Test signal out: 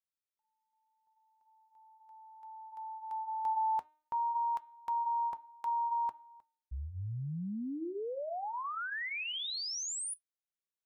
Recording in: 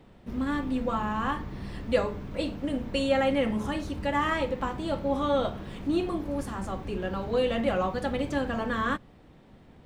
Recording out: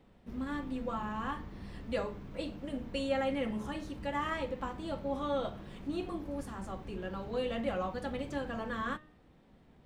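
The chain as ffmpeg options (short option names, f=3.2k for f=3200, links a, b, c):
-af "bandreject=f=305.5:t=h:w=4,bandreject=f=611:t=h:w=4,bandreject=f=916.5:t=h:w=4,bandreject=f=1.222k:t=h:w=4,bandreject=f=1.5275k:t=h:w=4,bandreject=f=1.833k:t=h:w=4,bandreject=f=2.1385k:t=h:w=4,bandreject=f=2.444k:t=h:w=4,bandreject=f=2.7495k:t=h:w=4,bandreject=f=3.055k:t=h:w=4,bandreject=f=3.3605k:t=h:w=4,bandreject=f=3.666k:t=h:w=4,bandreject=f=3.9715k:t=h:w=4,flanger=delay=3.8:depth=2.3:regen=-76:speed=0.64:shape=sinusoidal,volume=-3.5dB"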